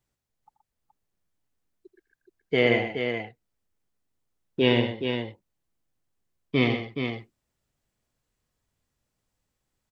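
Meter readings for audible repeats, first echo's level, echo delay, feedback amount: 3, -13.5 dB, 83 ms, no steady repeat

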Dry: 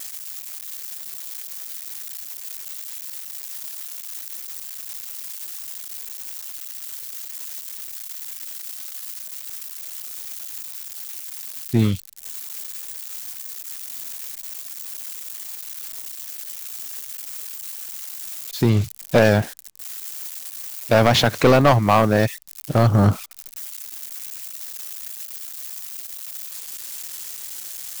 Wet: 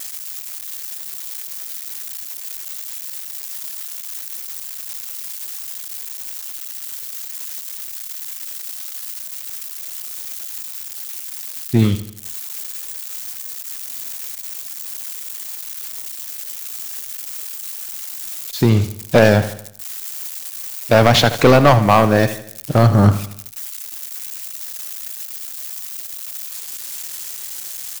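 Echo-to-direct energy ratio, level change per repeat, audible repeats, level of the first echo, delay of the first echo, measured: -12.5 dB, -6.5 dB, 4, -13.5 dB, 79 ms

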